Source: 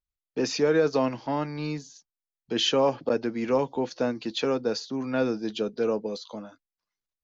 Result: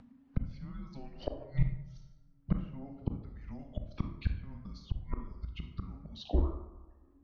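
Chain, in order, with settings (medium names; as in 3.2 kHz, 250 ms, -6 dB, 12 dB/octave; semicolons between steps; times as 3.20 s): reverb removal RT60 1.2 s; level-controlled noise filter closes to 1.3 kHz, open at -21.5 dBFS; frequency shift -280 Hz; inverted gate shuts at -27 dBFS, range -34 dB; low-pass that closes with the level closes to 1.2 kHz, closed at -44 dBFS; on a send at -4.5 dB: reverberation RT60 0.75 s, pre-delay 22 ms; on the sum: upward compressor, threshold -48 dBFS; bass shelf 150 Hz +9.5 dB; trim +6 dB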